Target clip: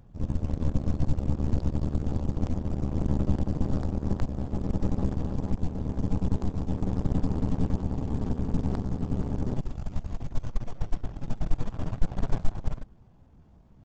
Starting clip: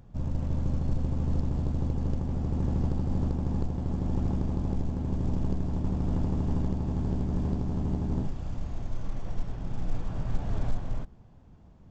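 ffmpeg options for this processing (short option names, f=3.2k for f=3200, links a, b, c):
-af "aeval=exprs='0.2*(cos(1*acos(clip(val(0)/0.2,-1,1)))-cos(1*PI/2))+0.00398*(cos(2*acos(clip(val(0)/0.2,-1,1)))-cos(2*PI/2))+0.0708*(cos(4*acos(clip(val(0)/0.2,-1,1)))-cos(4*PI/2))+0.00447*(cos(7*acos(clip(val(0)/0.2,-1,1)))-cos(7*PI/2))':c=same,atempo=0.86"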